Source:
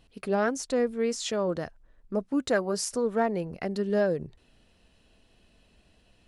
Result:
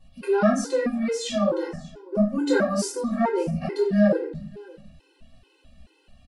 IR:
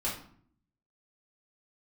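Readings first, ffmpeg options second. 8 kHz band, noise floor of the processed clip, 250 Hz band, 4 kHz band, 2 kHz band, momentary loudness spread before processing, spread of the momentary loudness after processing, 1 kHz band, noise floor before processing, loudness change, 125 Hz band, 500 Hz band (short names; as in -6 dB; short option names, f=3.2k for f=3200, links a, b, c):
+0.5 dB, -63 dBFS, +7.5 dB, +2.0 dB, +3.0 dB, 8 LU, 14 LU, +3.5 dB, -64 dBFS, +4.5 dB, +7.5 dB, +3.5 dB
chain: -filter_complex "[0:a]aecho=1:1:588:0.0841[a];[1:a]atrim=start_sample=2205[b];[a][b]afir=irnorm=-1:irlink=0,afftfilt=real='re*gt(sin(2*PI*2.3*pts/sr)*(1-2*mod(floor(b*sr/1024/270),2)),0)':imag='im*gt(sin(2*PI*2.3*pts/sr)*(1-2*mod(floor(b*sr/1024/270),2)),0)':win_size=1024:overlap=0.75,volume=1.5dB"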